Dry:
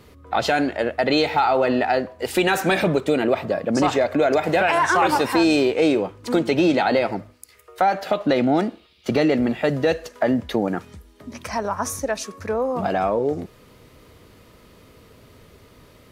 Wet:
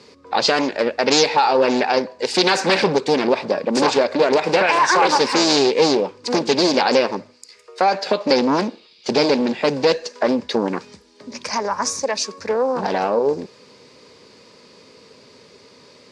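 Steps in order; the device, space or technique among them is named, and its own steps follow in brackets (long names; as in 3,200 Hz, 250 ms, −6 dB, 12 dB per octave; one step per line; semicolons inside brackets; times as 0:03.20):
full-range speaker at full volume (highs frequency-modulated by the lows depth 0.7 ms; loudspeaker in its box 290–7,500 Hz, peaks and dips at 320 Hz −7 dB, 690 Hz −10 dB, 1,300 Hz −9 dB, 1,900 Hz −5 dB, 3,100 Hz −6 dB, 4,800 Hz +8 dB)
level +7.5 dB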